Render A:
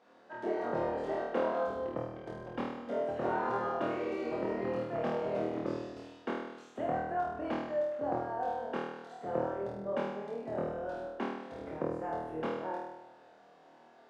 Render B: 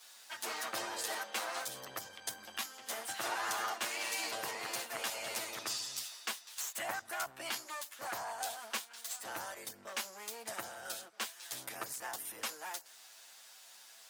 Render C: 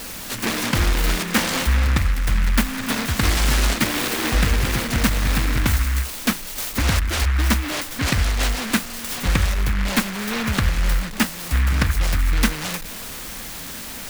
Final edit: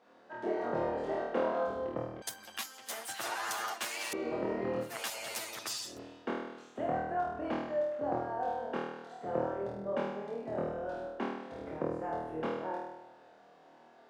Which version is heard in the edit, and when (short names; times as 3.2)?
A
2.22–4.13 from B
4.88–5.91 from B, crossfade 0.16 s
not used: C